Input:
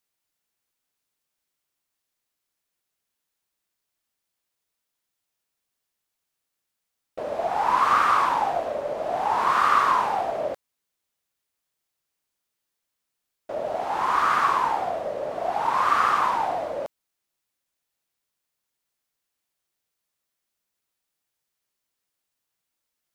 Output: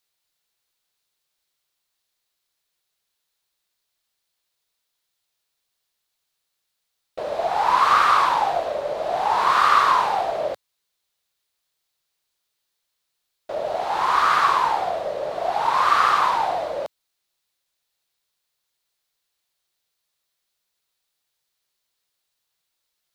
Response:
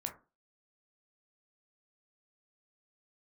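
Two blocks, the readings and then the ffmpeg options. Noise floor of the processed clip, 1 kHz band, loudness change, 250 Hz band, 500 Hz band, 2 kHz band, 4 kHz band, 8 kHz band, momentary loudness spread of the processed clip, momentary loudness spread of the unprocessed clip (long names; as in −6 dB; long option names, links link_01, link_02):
−78 dBFS, +3.0 dB, +3.0 dB, −1.5 dB, +2.5 dB, +3.5 dB, +7.5 dB, +4.0 dB, 14 LU, 13 LU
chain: -af "equalizer=frequency=100:width_type=o:width=0.67:gain=-3,equalizer=frequency=250:width_type=o:width=0.67:gain=-8,equalizer=frequency=4000:width_type=o:width=0.67:gain=7,volume=3dB"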